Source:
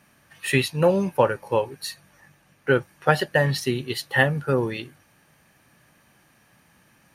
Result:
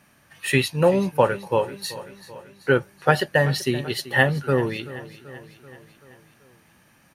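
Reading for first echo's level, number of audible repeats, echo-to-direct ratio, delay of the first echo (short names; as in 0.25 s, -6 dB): -17.0 dB, 4, -15.0 dB, 0.384 s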